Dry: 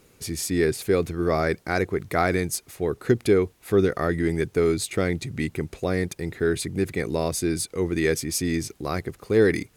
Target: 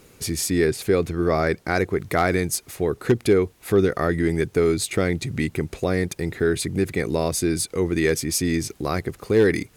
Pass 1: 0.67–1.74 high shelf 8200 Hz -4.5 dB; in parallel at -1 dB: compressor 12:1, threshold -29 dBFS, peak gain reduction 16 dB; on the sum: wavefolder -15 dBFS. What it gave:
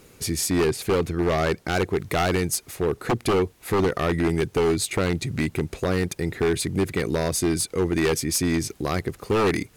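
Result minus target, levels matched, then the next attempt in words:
wavefolder: distortion +24 dB
0.67–1.74 high shelf 8200 Hz -4.5 dB; in parallel at -1 dB: compressor 12:1, threshold -29 dBFS, peak gain reduction 16 dB; on the sum: wavefolder -8 dBFS

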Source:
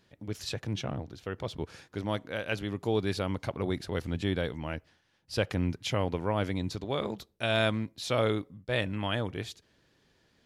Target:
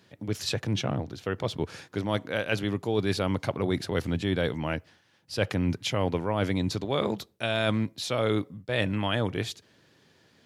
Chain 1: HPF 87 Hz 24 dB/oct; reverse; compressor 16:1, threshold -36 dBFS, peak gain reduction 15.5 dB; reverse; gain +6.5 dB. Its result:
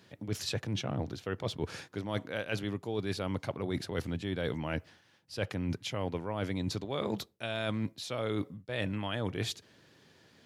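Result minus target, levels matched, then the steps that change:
compressor: peak gain reduction +8 dB
change: compressor 16:1, threshold -27.5 dBFS, peak gain reduction 7.5 dB

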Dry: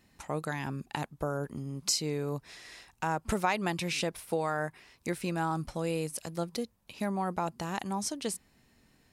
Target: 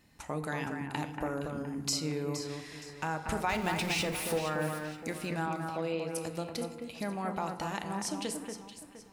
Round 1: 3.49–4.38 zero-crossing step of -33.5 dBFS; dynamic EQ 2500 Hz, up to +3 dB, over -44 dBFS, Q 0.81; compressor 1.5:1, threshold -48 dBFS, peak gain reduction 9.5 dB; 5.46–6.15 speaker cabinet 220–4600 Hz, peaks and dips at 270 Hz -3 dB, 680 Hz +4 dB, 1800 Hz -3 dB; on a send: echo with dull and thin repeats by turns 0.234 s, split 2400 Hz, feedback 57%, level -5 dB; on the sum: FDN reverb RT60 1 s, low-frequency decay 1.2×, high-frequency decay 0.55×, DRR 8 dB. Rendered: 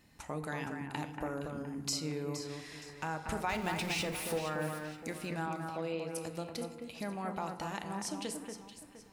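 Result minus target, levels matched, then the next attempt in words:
compressor: peak gain reduction +3.5 dB
3.49–4.38 zero-crossing step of -33.5 dBFS; dynamic EQ 2500 Hz, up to +3 dB, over -44 dBFS, Q 0.81; compressor 1.5:1, threshold -38 dBFS, peak gain reduction 6 dB; 5.46–6.15 speaker cabinet 220–4600 Hz, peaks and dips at 270 Hz -3 dB, 680 Hz +4 dB, 1800 Hz -3 dB; on a send: echo with dull and thin repeats by turns 0.234 s, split 2400 Hz, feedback 57%, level -5 dB; on the sum: FDN reverb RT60 1 s, low-frequency decay 1.2×, high-frequency decay 0.55×, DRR 8 dB

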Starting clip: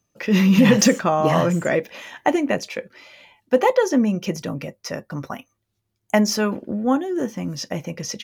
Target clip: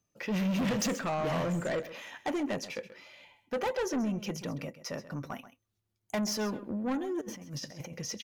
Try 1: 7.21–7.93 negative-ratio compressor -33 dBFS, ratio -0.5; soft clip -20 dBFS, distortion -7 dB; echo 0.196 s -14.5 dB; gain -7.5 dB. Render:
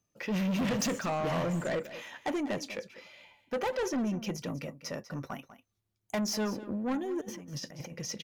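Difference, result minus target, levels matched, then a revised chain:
echo 64 ms late
7.21–7.93 negative-ratio compressor -33 dBFS, ratio -0.5; soft clip -20 dBFS, distortion -7 dB; echo 0.132 s -14.5 dB; gain -7.5 dB

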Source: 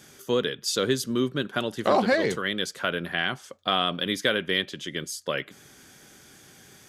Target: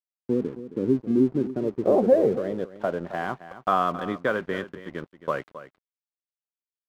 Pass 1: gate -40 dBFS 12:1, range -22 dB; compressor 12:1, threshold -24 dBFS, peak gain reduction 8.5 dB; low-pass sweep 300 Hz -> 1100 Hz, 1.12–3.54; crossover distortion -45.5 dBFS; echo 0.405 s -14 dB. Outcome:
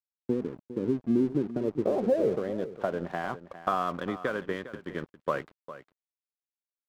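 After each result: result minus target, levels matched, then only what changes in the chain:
echo 0.137 s late; compressor: peak gain reduction +8.5 dB
change: echo 0.268 s -14 dB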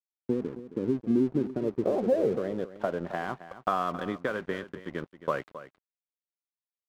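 compressor: peak gain reduction +8.5 dB
remove: compressor 12:1, threshold -24 dBFS, peak gain reduction 8.5 dB

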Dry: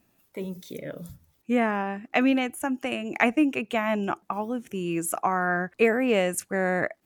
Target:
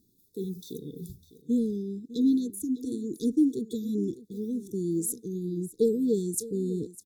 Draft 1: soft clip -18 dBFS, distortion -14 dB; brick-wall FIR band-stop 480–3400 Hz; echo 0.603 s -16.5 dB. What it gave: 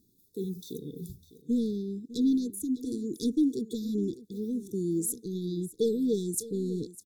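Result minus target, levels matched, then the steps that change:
soft clip: distortion +14 dB
change: soft clip -8 dBFS, distortion -28 dB

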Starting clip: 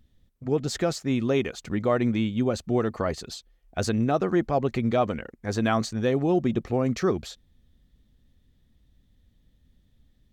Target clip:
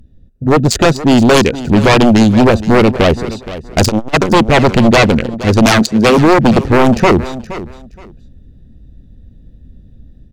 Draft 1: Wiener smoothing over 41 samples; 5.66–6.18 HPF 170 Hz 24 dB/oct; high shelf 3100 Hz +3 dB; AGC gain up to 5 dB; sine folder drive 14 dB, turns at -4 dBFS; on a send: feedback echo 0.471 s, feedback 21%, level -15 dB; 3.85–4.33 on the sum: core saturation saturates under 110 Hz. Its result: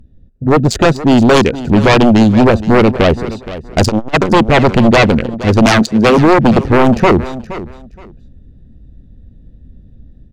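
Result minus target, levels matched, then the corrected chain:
8000 Hz band -4.5 dB
Wiener smoothing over 41 samples; 5.66–6.18 HPF 170 Hz 24 dB/oct; high shelf 3100 Hz +10.5 dB; AGC gain up to 5 dB; sine folder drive 14 dB, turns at -4 dBFS; on a send: feedback echo 0.471 s, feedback 21%, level -15 dB; 3.85–4.33 on the sum: core saturation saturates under 110 Hz

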